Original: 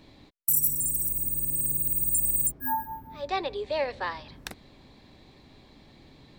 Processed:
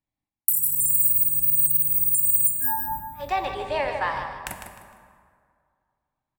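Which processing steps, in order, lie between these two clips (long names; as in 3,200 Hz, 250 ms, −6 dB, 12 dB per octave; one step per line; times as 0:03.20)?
noise gate −41 dBFS, range −41 dB
drawn EQ curve 140 Hz 0 dB, 470 Hz −10 dB, 770 Hz +1 dB, 2,900 Hz −1 dB, 4,100 Hz −11 dB, 9,100 Hz +8 dB
downward compressor 6 to 1, threshold −27 dBFS, peak gain reduction 15 dB
on a send: repeating echo 153 ms, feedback 28%, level −8.5 dB
on the sum: dense smooth reverb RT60 2.2 s, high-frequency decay 0.55×, DRR 6.5 dB
level +6.5 dB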